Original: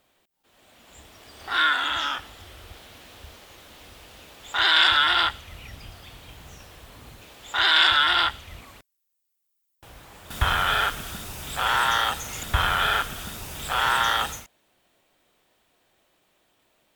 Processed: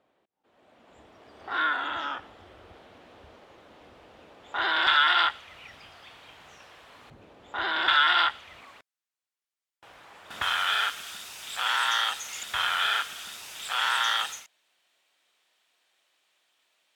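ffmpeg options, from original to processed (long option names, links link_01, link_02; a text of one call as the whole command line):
ffmpeg -i in.wav -af "asetnsamples=nb_out_samples=441:pad=0,asendcmd='4.87 bandpass f 1400;7.1 bandpass f 340;7.88 bandpass f 1400;10.42 bandpass f 3800',bandpass=frequency=480:width_type=q:width=0.52:csg=0" out.wav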